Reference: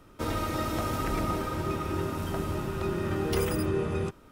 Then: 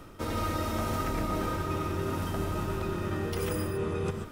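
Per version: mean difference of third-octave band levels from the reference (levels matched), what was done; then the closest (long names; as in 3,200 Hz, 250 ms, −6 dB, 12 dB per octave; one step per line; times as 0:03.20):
2.5 dB: reversed playback
downward compressor 10 to 1, threshold −37 dBFS, peak gain reduction 14.5 dB
reversed playback
reverb whose tail is shaped and stops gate 160 ms rising, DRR 5 dB
level +8 dB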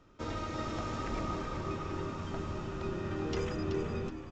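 4.5 dB: on a send: echo with shifted repeats 378 ms, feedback 30%, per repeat −78 Hz, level −7.5 dB
on the sum: downsampling to 16,000 Hz
level −7 dB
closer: first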